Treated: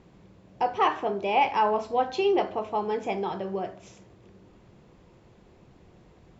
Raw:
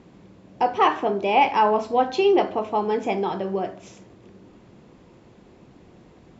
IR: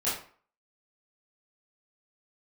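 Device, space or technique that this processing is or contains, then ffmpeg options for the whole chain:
low shelf boost with a cut just above: -af "lowshelf=frequency=79:gain=7.5,equalizer=frequency=260:width_type=o:width=0.63:gain=-5.5,volume=-4.5dB"

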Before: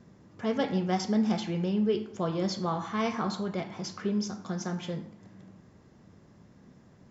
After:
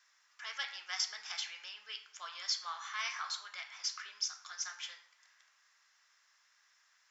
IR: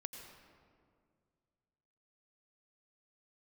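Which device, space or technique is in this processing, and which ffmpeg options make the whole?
headphones lying on a table: -af "highpass=frequency=1400:width=0.5412,highpass=frequency=1400:width=1.3066,equalizer=frequency=5500:width_type=o:width=0.34:gain=5,volume=1dB"

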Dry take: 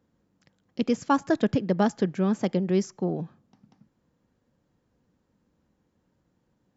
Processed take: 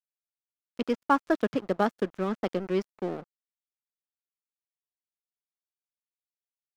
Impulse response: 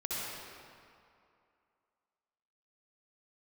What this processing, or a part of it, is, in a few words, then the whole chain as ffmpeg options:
pocket radio on a weak battery: -af "highpass=270,lowpass=4000,aeval=exprs='sgn(val(0))*max(abs(val(0))-0.01,0)':channel_layout=same,equalizer=frequency=1300:width_type=o:width=0.42:gain=4.5"

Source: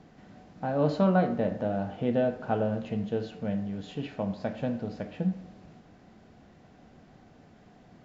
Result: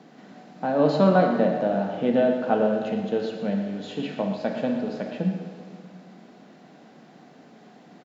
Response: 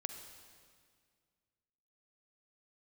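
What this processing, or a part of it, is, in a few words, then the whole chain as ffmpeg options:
PA in a hall: -filter_complex "[0:a]highpass=frequency=180:width=0.5412,highpass=frequency=180:width=1.3066,equalizer=frequency=4000:width_type=o:width=0.3:gain=3,aecho=1:1:116:0.282[link_01];[1:a]atrim=start_sample=2205[link_02];[link_01][link_02]afir=irnorm=-1:irlink=0,volume=7.5dB"

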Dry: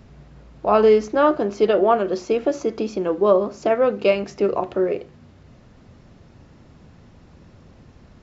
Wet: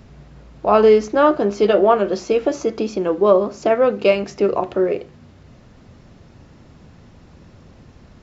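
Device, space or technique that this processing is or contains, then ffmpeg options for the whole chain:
exciter from parts: -filter_complex "[0:a]asplit=2[link_01][link_02];[link_02]highpass=frequency=3300:poles=1,asoftclip=type=tanh:threshold=-28.5dB,volume=-13dB[link_03];[link_01][link_03]amix=inputs=2:normalize=0,asettb=1/sr,asplit=3[link_04][link_05][link_06];[link_04]atrim=end=1.394[link_07];[link_05]atrim=start=1.39:end=2.7,asetpts=PTS-STARTPTS,afade=type=in:duration=0.004:curve=qsin,afade=type=out:start_time=1.306:duration=0.004:curve=qsin,asplit=2[link_08][link_09];[link_09]adelay=15,volume=-8dB[link_10];[link_08][link_10]amix=inputs=2:normalize=0,atrim=end_sample=57771[link_11];[link_06]atrim=start=2.696[link_12];[link_07][link_11]acrossfade=duration=0.004:curve1=hsin:curve2=qsin[link_13];[link_13][link_12]acrossfade=duration=0.004:curve1=qsin:curve2=hsin,volume=2.5dB"

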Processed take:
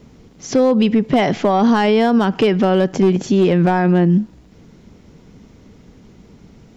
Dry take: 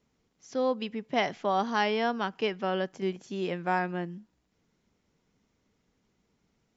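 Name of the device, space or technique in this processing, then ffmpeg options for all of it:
mastering chain: -af "equalizer=frequency=3800:width_type=o:width=2.4:gain=4,acompressor=threshold=-30dB:ratio=2.5,asoftclip=type=tanh:threshold=-21dB,tiltshelf=frequency=700:gain=7,asoftclip=type=hard:threshold=-24dB,alimiter=level_in=30.5dB:limit=-1dB:release=50:level=0:latency=1,volume=-6.5dB"

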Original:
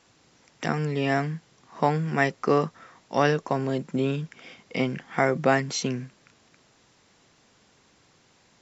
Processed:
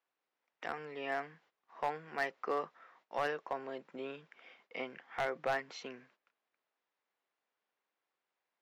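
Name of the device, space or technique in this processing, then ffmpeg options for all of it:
walkie-talkie: -af "highpass=540,lowpass=2700,asoftclip=type=hard:threshold=-17dB,agate=range=-15dB:threshold=-58dB:ratio=16:detection=peak,volume=-9dB"

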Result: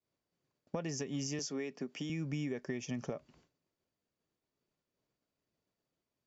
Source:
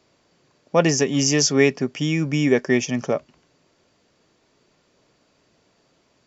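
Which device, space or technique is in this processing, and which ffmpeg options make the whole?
serial compression, leveller first: -filter_complex "[0:a]agate=range=-33dB:threshold=-50dB:ratio=3:detection=peak,acompressor=threshold=-20dB:ratio=2,acompressor=threshold=-30dB:ratio=5,lowshelf=frequency=250:gain=5.5,asettb=1/sr,asplit=3[link_01][link_02][link_03];[link_01]atrim=end=1.394[link_04];[link_02]atrim=start=1.39:end=2.1,asetpts=PTS-STARTPTS,afade=type=in:duration=0.004:curve=qsin,afade=type=out:start_time=0.706:duration=0.004:curve=qsin,highpass=frequency=180:width=0.5412,highpass=frequency=180:width=1.3066[link_05];[link_03]atrim=start=2.096[link_06];[link_04][link_05]acrossfade=duration=0.004:curve1=hsin:curve2=qsin[link_07];[link_07][link_06]acrossfade=duration=0.004:curve1=qsin:curve2=hsin,volume=-8dB"

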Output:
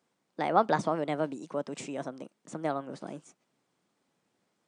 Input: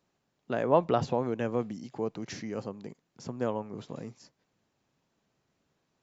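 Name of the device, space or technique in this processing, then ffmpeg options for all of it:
nightcore: -af "asetrate=56889,aresample=44100,highpass=120"

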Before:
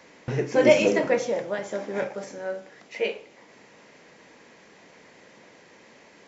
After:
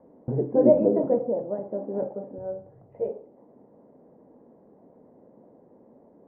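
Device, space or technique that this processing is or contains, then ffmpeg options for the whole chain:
under water: -filter_complex "[0:a]asettb=1/sr,asplit=3[link_01][link_02][link_03];[link_01]atrim=end=2.384[link_04];[link_02]atrim=start=2.38:end=3.1,asetpts=PTS-STARTPTS,afade=type=in:duration=0.004:curve=qsin,afade=type=out:start_time=0.716:duration=0.004:curve=qsin,lowshelf=frequency=160:width_type=q:width=3:gain=12.5[link_05];[link_03]atrim=start=3.096[link_06];[link_04][link_05]acrossfade=duration=0.004:curve1=hsin:curve2=qsin[link_07];[link_07][link_06]acrossfade=duration=0.004:curve1=qsin:curve2=hsin,lowpass=frequency=740:width=0.5412,lowpass=frequency=740:width=1.3066,equalizer=frequency=250:width_type=o:width=0.4:gain=5"

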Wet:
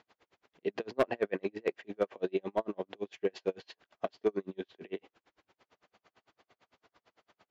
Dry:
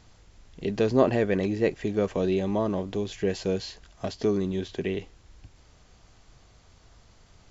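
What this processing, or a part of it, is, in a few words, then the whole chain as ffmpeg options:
helicopter radio: -af "highpass=360,lowpass=2900,aeval=exprs='val(0)*pow(10,-40*(0.5-0.5*cos(2*PI*8.9*n/s))/20)':channel_layout=same,asoftclip=type=hard:threshold=-21.5dB,volume=2dB"

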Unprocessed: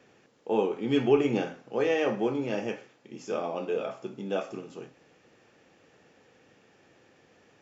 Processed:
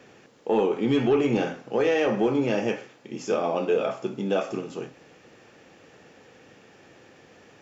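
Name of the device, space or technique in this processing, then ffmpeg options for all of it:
soft clipper into limiter: -af "asoftclip=type=tanh:threshold=-16dB,alimiter=limit=-22.5dB:level=0:latency=1:release=128,volume=8dB"

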